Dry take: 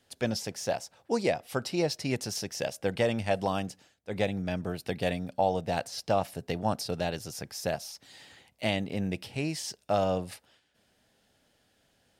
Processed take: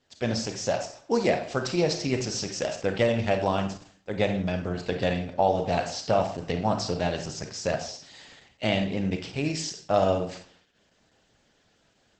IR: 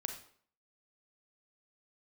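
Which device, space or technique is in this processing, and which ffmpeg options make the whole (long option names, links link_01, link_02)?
speakerphone in a meeting room: -filter_complex "[1:a]atrim=start_sample=2205[link_01];[0:a][link_01]afir=irnorm=-1:irlink=0,dynaudnorm=framelen=150:gausssize=3:maxgain=5dB" -ar 48000 -c:a libopus -b:a 12k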